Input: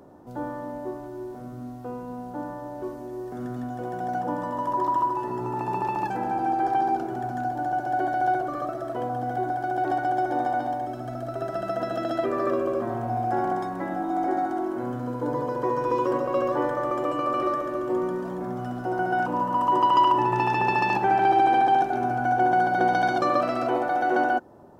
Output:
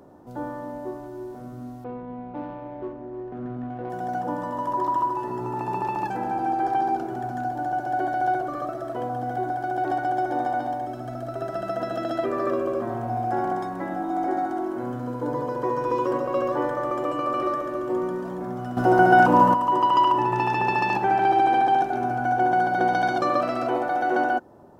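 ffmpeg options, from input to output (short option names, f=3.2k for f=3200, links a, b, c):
-filter_complex "[0:a]asettb=1/sr,asplit=3[a][b][c];[a]atrim=end=1.844[d];[b]atrim=start=1.84:end=3.9,asetpts=PTS-STARTPTS,afade=t=in:d=0.004:c=qsin,afade=t=out:st=2.056:d=0.004:c=qsin,adynamicsmooth=sensitivity=3:basefreq=1.1k[e];[c]atrim=start=3.896[f];[d][e]acrossfade=d=0.004:c1=hsin:c2=qsin[g];[g][f]acrossfade=d=0.004:c1=qsin:c2=hsin,asplit=3[h][i][j];[h]atrim=end=18.772[k];[i]atrim=start=18.768:end=19.542,asetpts=PTS-STARTPTS,volume=10dB[l];[j]atrim=start=19.538[m];[k][l]acrossfade=d=0.004:c1=hsin:c2=hsin[n];[n][m]acrossfade=d=0.004:c1=hsin:c2=hsin"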